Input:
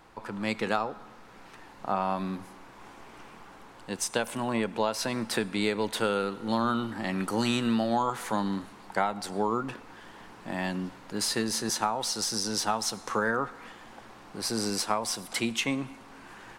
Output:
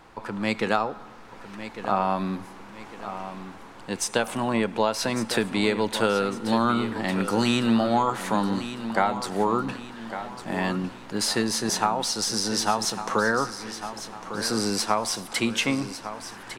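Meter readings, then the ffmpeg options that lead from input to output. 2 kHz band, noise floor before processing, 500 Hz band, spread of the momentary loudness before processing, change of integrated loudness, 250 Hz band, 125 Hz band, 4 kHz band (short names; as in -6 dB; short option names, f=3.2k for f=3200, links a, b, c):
+4.5 dB, -50 dBFS, +5.0 dB, 20 LU, +4.0 dB, +5.0 dB, +5.0 dB, +4.0 dB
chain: -af "highshelf=f=10k:g=-5,aecho=1:1:1153|2306|3459|4612:0.266|0.109|0.0447|0.0183,volume=4.5dB"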